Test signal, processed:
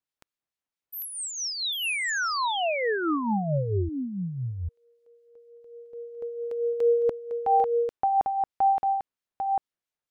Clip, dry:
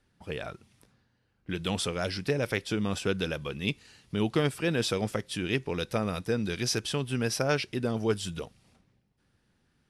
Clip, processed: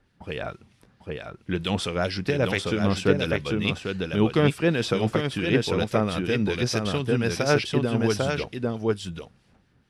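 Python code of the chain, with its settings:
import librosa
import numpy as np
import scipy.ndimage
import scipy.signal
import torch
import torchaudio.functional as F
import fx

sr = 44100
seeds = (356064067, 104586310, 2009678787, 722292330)

p1 = x + fx.echo_single(x, sr, ms=797, db=-4.0, dry=0)
p2 = fx.harmonic_tremolo(p1, sr, hz=4.5, depth_pct=50, crossover_hz=1900.0)
p3 = fx.high_shelf(p2, sr, hz=6400.0, db=-11.0)
y = p3 * 10.0 ** (7.5 / 20.0)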